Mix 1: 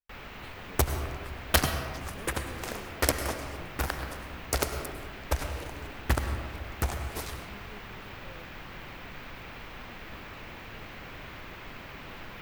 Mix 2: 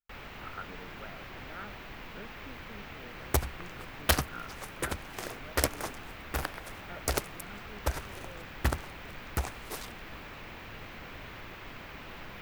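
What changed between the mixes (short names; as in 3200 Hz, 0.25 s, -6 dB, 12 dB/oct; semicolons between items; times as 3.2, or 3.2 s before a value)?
speech: add synth low-pass 1400 Hz, resonance Q 13; second sound: entry +2.55 s; reverb: off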